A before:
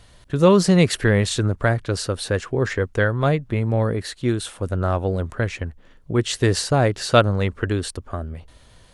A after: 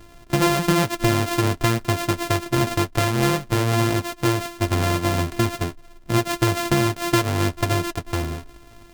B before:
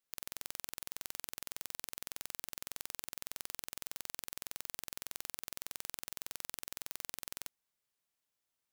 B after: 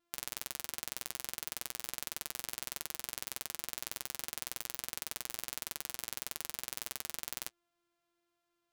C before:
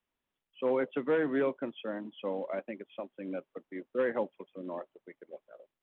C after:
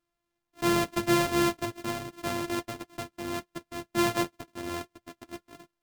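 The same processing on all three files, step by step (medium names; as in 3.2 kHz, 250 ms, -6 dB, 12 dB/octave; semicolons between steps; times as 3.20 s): sorted samples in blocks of 128 samples; compression 6:1, threshold -20 dBFS; flange 1.4 Hz, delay 6.4 ms, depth 2 ms, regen -43%; trim +8 dB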